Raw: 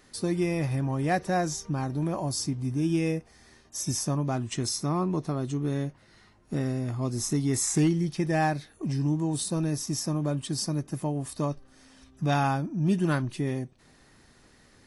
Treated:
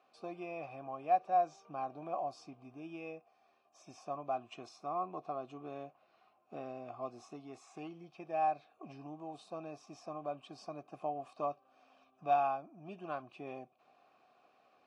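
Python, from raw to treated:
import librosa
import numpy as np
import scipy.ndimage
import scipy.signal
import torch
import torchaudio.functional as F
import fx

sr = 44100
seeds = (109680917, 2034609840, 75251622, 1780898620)

y = scipy.signal.sosfilt(scipy.signal.butter(2, 94.0, 'highpass', fs=sr, output='sos'), x)
y = fx.low_shelf(y, sr, hz=120.0, db=-5.0)
y = fx.rider(y, sr, range_db=10, speed_s=0.5)
y = fx.vowel_filter(y, sr, vowel='a')
y = fx.air_absorb(y, sr, metres=64.0)
y = y * librosa.db_to_amplitude(2.5)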